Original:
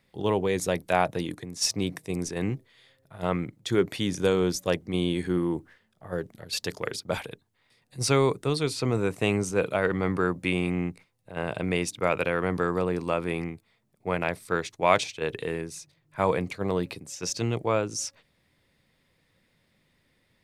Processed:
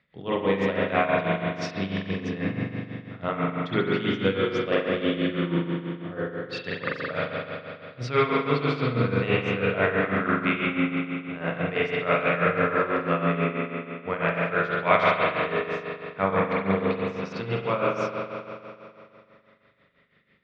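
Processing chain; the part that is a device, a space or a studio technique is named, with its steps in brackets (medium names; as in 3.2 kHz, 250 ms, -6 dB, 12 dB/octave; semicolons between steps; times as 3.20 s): combo amplifier with spring reverb and tremolo (spring tank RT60 2.7 s, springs 41 ms, chirp 30 ms, DRR -6.5 dB; tremolo 6.1 Hz, depth 71%; cabinet simulation 75–3800 Hz, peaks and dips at 100 Hz -5 dB, 350 Hz -7 dB, 850 Hz -7 dB, 1.3 kHz +4 dB, 1.9 kHz +4 dB)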